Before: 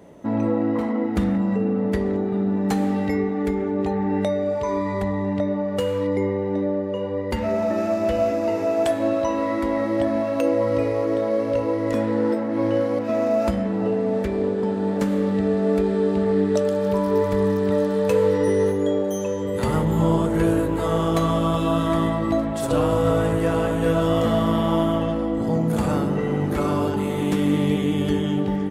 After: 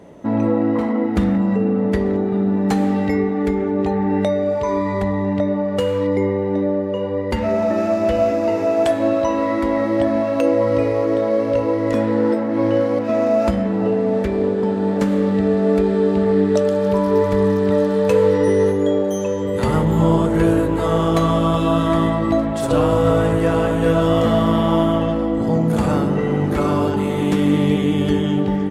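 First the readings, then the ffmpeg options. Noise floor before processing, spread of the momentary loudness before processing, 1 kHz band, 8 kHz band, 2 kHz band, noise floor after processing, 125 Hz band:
−25 dBFS, 4 LU, +4.0 dB, can't be measured, +4.0 dB, −21 dBFS, +4.0 dB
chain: -af "highshelf=frequency=10000:gain=-8,volume=4dB"

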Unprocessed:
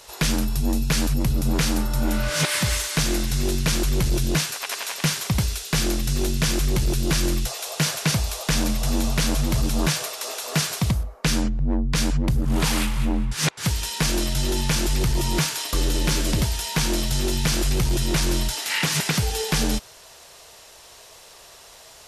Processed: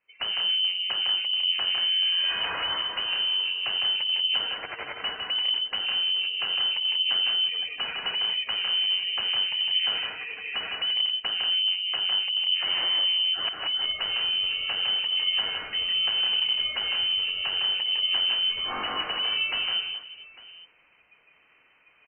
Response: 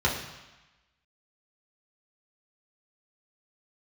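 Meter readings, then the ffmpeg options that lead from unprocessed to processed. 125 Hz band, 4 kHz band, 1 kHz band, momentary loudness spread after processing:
below −30 dB, +8.0 dB, −5.5 dB, 6 LU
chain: -filter_complex "[0:a]afftdn=noise_reduction=28:noise_floor=-32,asplit=2[link_01][link_02];[link_02]adelay=80,highpass=300,lowpass=3400,asoftclip=type=hard:threshold=-21.5dB,volume=-29dB[link_03];[link_01][link_03]amix=inputs=2:normalize=0,alimiter=limit=-19.5dB:level=0:latency=1:release=13,areverse,acompressor=mode=upward:threshold=-45dB:ratio=2.5,areverse,asoftclip=type=tanh:threshold=-22.5dB,asplit=2[link_04][link_05];[link_05]aecho=0:1:59|156|186|432|850:0.15|0.631|0.501|0.133|0.119[link_06];[link_04][link_06]amix=inputs=2:normalize=0,adynamicequalizer=threshold=0.00562:dfrequency=310:dqfactor=2.5:tfrequency=310:tqfactor=2.5:attack=5:release=100:ratio=0.375:range=2.5:mode=cutabove:tftype=bell,lowpass=frequency=2600:width_type=q:width=0.5098,lowpass=frequency=2600:width_type=q:width=0.6013,lowpass=frequency=2600:width_type=q:width=0.9,lowpass=frequency=2600:width_type=q:width=2.563,afreqshift=-3100"

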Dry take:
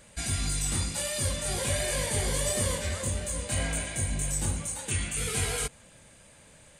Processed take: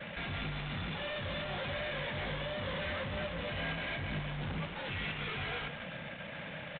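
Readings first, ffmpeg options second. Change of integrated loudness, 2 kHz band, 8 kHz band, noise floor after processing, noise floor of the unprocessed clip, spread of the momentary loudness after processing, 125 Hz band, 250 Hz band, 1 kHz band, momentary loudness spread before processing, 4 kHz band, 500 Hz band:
−8.5 dB, −0.5 dB, below −40 dB, −44 dBFS, −55 dBFS, 6 LU, −8.0 dB, −4.0 dB, −1.5 dB, 4 LU, −5.0 dB, −5.0 dB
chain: -filter_complex "[0:a]equalizer=frequency=160:width_type=o:width=0.67:gain=7,equalizer=frequency=400:width_type=o:width=0.67:gain=-9,equalizer=frequency=1000:width_type=o:width=0.67:gain=-6,asplit=2[link_01][link_02];[link_02]highpass=frequency=720:poles=1,volume=36dB,asoftclip=type=tanh:threshold=-14.5dB[link_03];[link_01][link_03]amix=inputs=2:normalize=0,lowpass=frequency=1700:poles=1,volume=-6dB,anlmdn=3.98,aresample=8000,asoftclip=type=tanh:threshold=-27.5dB,aresample=44100,aecho=1:1:157:0.211,volume=-6dB"

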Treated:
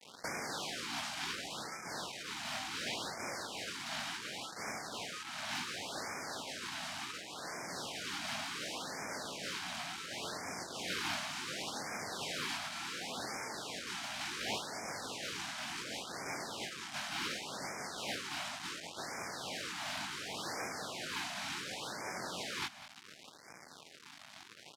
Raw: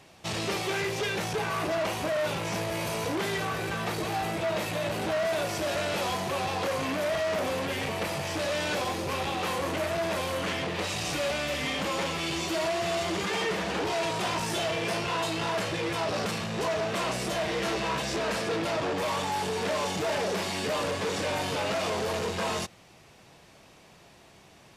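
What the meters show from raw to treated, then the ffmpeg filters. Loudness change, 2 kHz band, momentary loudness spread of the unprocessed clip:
−10.5 dB, −8.5 dB, 2 LU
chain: -af "lowshelf=frequency=230:gain=-7,aecho=1:1:1.3:0.53,acompressor=threshold=-42dB:ratio=8,flanger=delay=19:depth=4:speed=0.34,crystalizer=i=6.5:c=0,aeval=exprs='sgn(val(0))*max(abs(val(0))-0.00251,0)':channel_layout=same,aexciter=amount=2:drive=6.3:freq=2200,aeval=exprs='abs(val(0))':channel_layout=same,acrusher=bits=5:mix=0:aa=0.000001,highpass=160,lowpass=4800,aecho=1:1:199:0.211,afftfilt=real='re*(1-between(b*sr/1024,400*pow(3500/400,0.5+0.5*sin(2*PI*0.69*pts/sr))/1.41,400*pow(3500/400,0.5+0.5*sin(2*PI*0.69*pts/sr))*1.41))':imag='im*(1-between(b*sr/1024,400*pow(3500/400,0.5+0.5*sin(2*PI*0.69*pts/sr))/1.41,400*pow(3500/400,0.5+0.5*sin(2*PI*0.69*pts/sr))*1.41))':win_size=1024:overlap=0.75,volume=-1dB"

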